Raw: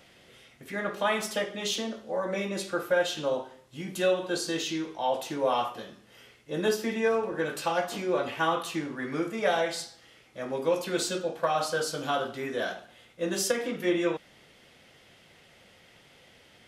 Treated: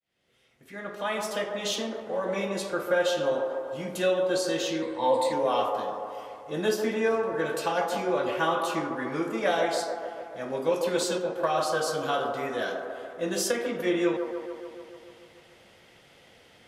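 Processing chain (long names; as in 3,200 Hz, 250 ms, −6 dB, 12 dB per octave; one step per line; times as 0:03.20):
fade in at the beginning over 1.66 s
0:04.82–0:05.33: EQ curve with evenly spaced ripples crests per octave 0.98, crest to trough 16 dB
delay with a band-pass on its return 145 ms, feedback 69%, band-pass 670 Hz, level −4 dB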